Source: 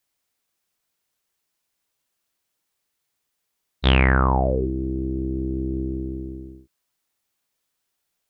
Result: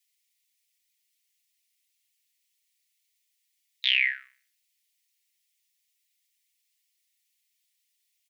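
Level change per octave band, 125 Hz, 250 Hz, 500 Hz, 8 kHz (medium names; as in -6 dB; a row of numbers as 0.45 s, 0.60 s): under -40 dB, under -40 dB, under -40 dB, no reading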